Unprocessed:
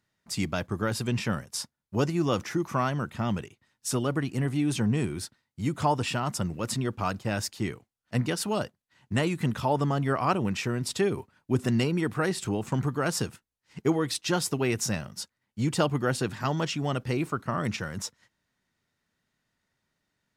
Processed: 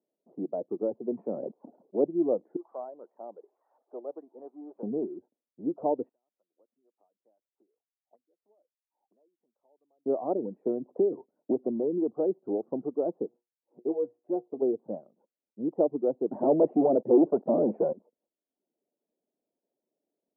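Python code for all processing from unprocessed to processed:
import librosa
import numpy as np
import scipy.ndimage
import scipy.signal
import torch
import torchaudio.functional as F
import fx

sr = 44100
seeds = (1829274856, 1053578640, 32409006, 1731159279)

y = fx.chain(x, sr, fx.highpass(hz=140.0, slope=12),
    fx.peak_eq(hz=6200.0, db=-6.0, octaves=0.39),
    fx.sustainer(db_per_s=28.0), at=(0.99, 2.05))
y = fx.chain(y, sr, fx.crossing_spikes(level_db=-22.0),
    fx.highpass(hz=810.0, slope=12), at=(2.56, 4.83))
y = fx.chain(y, sr, fx.auto_wah(base_hz=700.0, top_hz=5000.0, q=13.0, full_db=-23.5, direction='up'),
    fx.band_squash(depth_pct=40), at=(6.09, 10.06))
y = fx.chain(y, sr, fx.clip_hard(threshold_db=-18.5),
    fx.band_squash(depth_pct=100), at=(10.66, 12.11))
y = fx.chain(y, sr, fx.law_mismatch(coded='mu'),
    fx.low_shelf(hz=78.0, db=-7.5),
    fx.comb_fb(f0_hz=120.0, decay_s=0.2, harmonics='all', damping=0.0, mix_pct=70), at=(13.28, 14.62))
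y = fx.chain(y, sr, fx.highpass(hz=140.0, slope=6),
    fx.peak_eq(hz=1200.0, db=-6.0, octaves=0.28),
    fx.leveller(passes=5), at=(16.31, 17.93))
y = scipy.signal.sosfilt(scipy.signal.butter(6, 660.0, 'lowpass', fs=sr, output='sos'), y)
y = fx.dereverb_blind(y, sr, rt60_s=0.63)
y = scipy.signal.sosfilt(scipy.signal.butter(4, 300.0, 'highpass', fs=sr, output='sos'), y)
y = F.gain(torch.from_numpy(y), 4.0).numpy()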